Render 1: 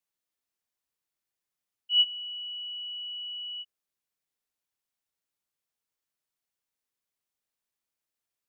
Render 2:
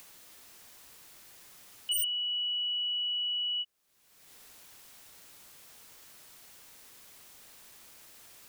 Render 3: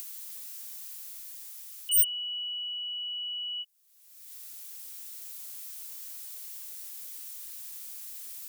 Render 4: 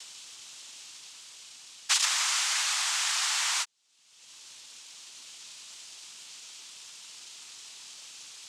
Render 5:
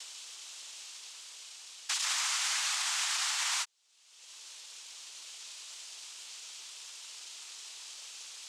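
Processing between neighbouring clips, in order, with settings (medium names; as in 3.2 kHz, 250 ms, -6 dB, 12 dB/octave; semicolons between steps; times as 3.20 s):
upward compressor, threshold -36 dBFS; wavefolder -29.5 dBFS; trim +5 dB
pre-emphasis filter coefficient 0.9; gain riding within 3 dB 2 s; trim +6.5 dB
noise-vocoded speech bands 4; trim +7 dB
high-pass 370 Hz 24 dB/octave; peak limiter -22.5 dBFS, peak gain reduction 9.5 dB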